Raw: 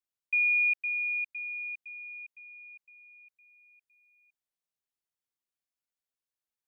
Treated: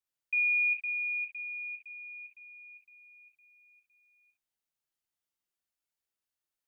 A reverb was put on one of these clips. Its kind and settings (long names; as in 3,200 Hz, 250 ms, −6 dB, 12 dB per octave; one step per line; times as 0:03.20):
reverb whose tail is shaped and stops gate 80 ms rising, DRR −0.5 dB
level −2 dB